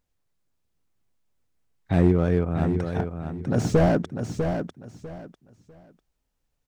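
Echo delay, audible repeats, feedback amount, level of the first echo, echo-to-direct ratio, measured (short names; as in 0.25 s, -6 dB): 0.648 s, 3, 23%, -7.0 dB, -7.0 dB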